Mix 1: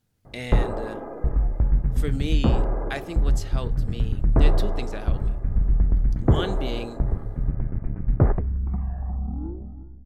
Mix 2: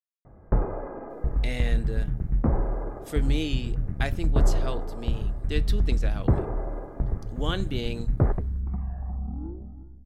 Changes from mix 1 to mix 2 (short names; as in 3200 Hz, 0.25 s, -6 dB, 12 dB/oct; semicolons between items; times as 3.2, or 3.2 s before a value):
speech: entry +1.10 s; background -3.5 dB